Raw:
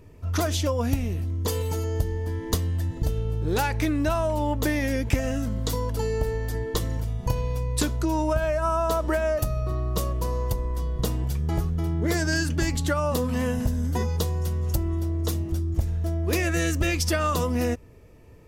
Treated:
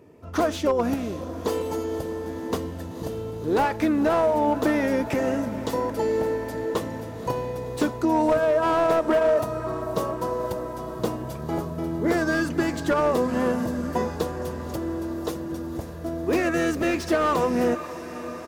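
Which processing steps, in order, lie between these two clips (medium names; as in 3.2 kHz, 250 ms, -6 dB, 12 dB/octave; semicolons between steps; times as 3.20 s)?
high-pass 240 Hz 12 dB/octave; dynamic bell 1.1 kHz, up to +4 dB, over -36 dBFS, Q 0.85; harmony voices -5 st -12 dB; tilt shelf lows +5 dB, about 1.4 kHz; on a send: echo that smears into a reverb 523 ms, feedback 73%, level -14.5 dB; on the sum: slew-rate limiter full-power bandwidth 110 Hz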